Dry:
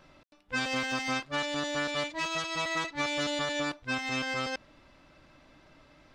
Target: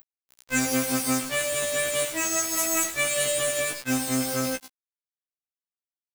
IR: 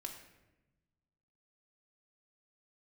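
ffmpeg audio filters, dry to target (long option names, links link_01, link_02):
-filter_complex "[0:a]asettb=1/sr,asplit=3[link_01][link_02][link_03];[link_01]atrim=end=2.454[link_04];[link_02]atrim=start=2.45:end=2.98,asetpts=PTS-STARTPTS,afade=type=in:duration=0.004:curve=qsin,afade=type=out:start_time=0.526:duration=0.004:curve=qsin,aeval=exprs='0.1*(cos(1*acos(clip(val(0)/0.1,-1,1)))-cos(1*PI/2))+0.00447*(cos(7*acos(clip(val(0)/0.1,-1,1)))-cos(7*PI/2))':channel_layout=same[link_05];[link_03]atrim=start=2.976[link_06];[link_04][link_05]acrossfade=duration=0.004:curve1=hsin:curve2=qsin[link_07];[link_07][link_06]acrossfade=duration=0.004:curve1=qsin:curve2=hsin,equalizer=frequency=250:width_type=o:width=0.67:gain=3,equalizer=frequency=1000:width_type=o:width=0.67:gain=-9,equalizer=frequency=2500:width_type=o:width=0.67:gain=5,aexciter=amount=14.4:drive=7.9:freq=7500,bandreject=frequency=50:width_type=h:width=6,bandreject=frequency=100:width_type=h:width=6,bandreject=frequency=150:width_type=h:width=6,asplit=2[link_08][link_09];[link_09]acompressor=mode=upward:threshold=-33dB:ratio=2.5,volume=-2.5dB[link_10];[link_08][link_10]amix=inputs=2:normalize=0,aecho=1:1:109:0.266,asplit=2[link_11][link_12];[1:a]atrim=start_sample=2205,lowshelf=frequency=150:gain=9[link_13];[link_12][link_13]afir=irnorm=-1:irlink=0,volume=-16dB[link_14];[link_11][link_14]amix=inputs=2:normalize=0,afftfilt=real='re*gte(hypot(re,im),0.00355)':imag='im*gte(hypot(re,im),0.00355)':win_size=1024:overlap=0.75,acrusher=bits=4:mix=0:aa=0.000001,afftfilt=real='re*1.73*eq(mod(b,3),0)':imag='im*1.73*eq(mod(b,3),0)':win_size=2048:overlap=0.75"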